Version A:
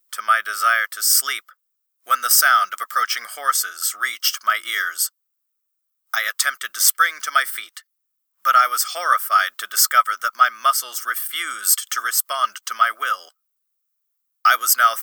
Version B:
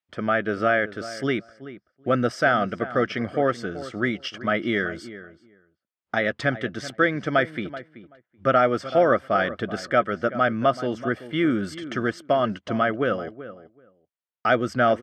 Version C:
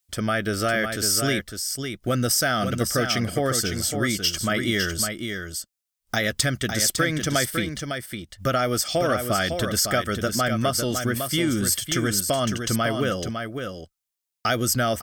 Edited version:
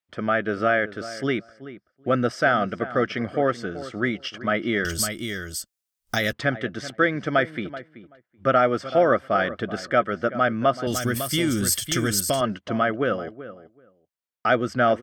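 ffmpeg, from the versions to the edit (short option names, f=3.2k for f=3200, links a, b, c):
-filter_complex "[2:a]asplit=2[a][b];[1:a]asplit=3[c][d][e];[c]atrim=end=4.852[f];[a]atrim=start=4.848:end=6.332[g];[d]atrim=start=6.328:end=10.872[h];[b]atrim=start=10.868:end=12.412[i];[e]atrim=start=12.408[j];[f][g]acrossfade=d=0.004:c1=hsin:c2=hsin[k];[k][h]acrossfade=d=0.004:c1=hsin:c2=hsin[l];[l][i]acrossfade=d=0.004:c1=hsin:c2=hsin[m];[m][j]acrossfade=d=0.004:c1=hsin:c2=hsin"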